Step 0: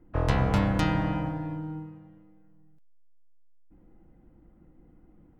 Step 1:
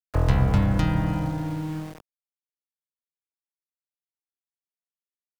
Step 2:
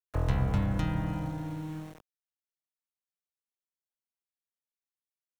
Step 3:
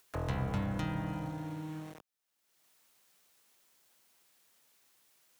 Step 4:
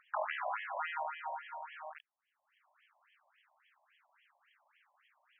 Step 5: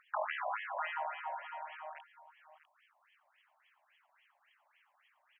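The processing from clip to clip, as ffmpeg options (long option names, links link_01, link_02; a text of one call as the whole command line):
ffmpeg -i in.wav -filter_complex "[0:a]aeval=exprs='val(0)*gte(abs(val(0)),0.00841)':channel_layout=same,acrossover=split=170[link_01][link_02];[link_02]acompressor=threshold=-37dB:ratio=2.5[link_03];[link_01][link_03]amix=inputs=2:normalize=0,volume=6.5dB" out.wav
ffmpeg -i in.wav -af "bandreject=frequency=4800:width=9.9,volume=-7.5dB" out.wav
ffmpeg -i in.wav -filter_complex "[0:a]highpass=frequency=160:poles=1,asplit=2[link_01][link_02];[link_02]acompressor=mode=upward:threshold=-34dB:ratio=2.5,volume=1dB[link_03];[link_01][link_03]amix=inputs=2:normalize=0,volume=-8.5dB" out.wav
ffmpeg -i in.wav -filter_complex "[0:a]asplit=2[link_01][link_02];[link_02]volume=34dB,asoftclip=hard,volume=-34dB,volume=-6dB[link_03];[link_01][link_03]amix=inputs=2:normalize=0,afftfilt=real='re*between(b*sr/1024,760*pow(2400/760,0.5+0.5*sin(2*PI*3.6*pts/sr))/1.41,760*pow(2400/760,0.5+0.5*sin(2*PI*3.6*pts/sr))*1.41)':imag='im*between(b*sr/1024,760*pow(2400/760,0.5+0.5*sin(2*PI*3.6*pts/sr))/1.41,760*pow(2400/760,0.5+0.5*sin(2*PI*3.6*pts/sr))*1.41)':win_size=1024:overlap=0.75,volume=6.5dB" out.wav
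ffmpeg -i in.wav -af "aecho=1:1:649:0.2" out.wav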